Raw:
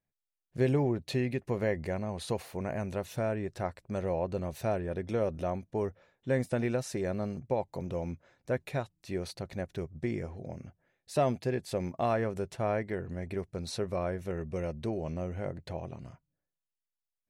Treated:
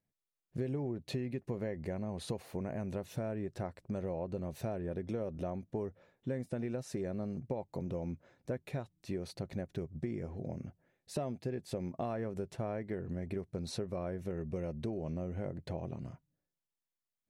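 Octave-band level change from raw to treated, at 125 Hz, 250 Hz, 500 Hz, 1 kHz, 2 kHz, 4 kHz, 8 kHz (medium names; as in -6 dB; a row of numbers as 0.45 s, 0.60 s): -4.5 dB, -3.5 dB, -7.0 dB, -9.5 dB, -10.5 dB, -5.5 dB, -6.0 dB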